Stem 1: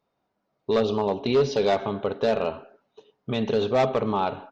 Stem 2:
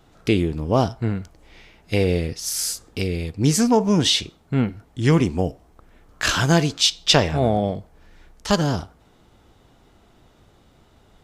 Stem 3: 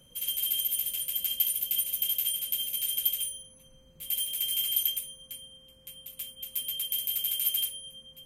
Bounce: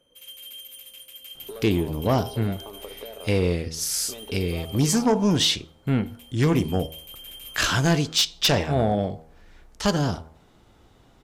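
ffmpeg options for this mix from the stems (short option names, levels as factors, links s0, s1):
-filter_complex "[0:a]acompressor=threshold=0.0501:ratio=6,adelay=800,volume=0.447[s0];[1:a]bandreject=f=79.72:t=h:w=4,bandreject=f=159.44:t=h:w=4,bandreject=f=239.16:t=h:w=4,bandreject=f=318.88:t=h:w=4,bandreject=f=398.6:t=h:w=4,bandreject=f=478.32:t=h:w=4,bandreject=f=558.04:t=h:w=4,bandreject=f=637.76:t=h:w=4,bandreject=f=717.48:t=h:w=4,bandreject=f=797.2:t=h:w=4,bandreject=f=876.92:t=h:w=4,bandreject=f=956.64:t=h:w=4,bandreject=f=1036.36:t=h:w=4,aeval=exprs='0.75*sin(PI/2*2*val(0)/0.75)':c=same,adelay=1350,volume=0.282[s1];[2:a]lowpass=f=2300:p=1,volume=0.794[s2];[s0][s2]amix=inputs=2:normalize=0,lowshelf=f=240:t=q:w=1.5:g=-10,acompressor=threshold=0.0178:ratio=6,volume=1[s3];[s1][s3]amix=inputs=2:normalize=0"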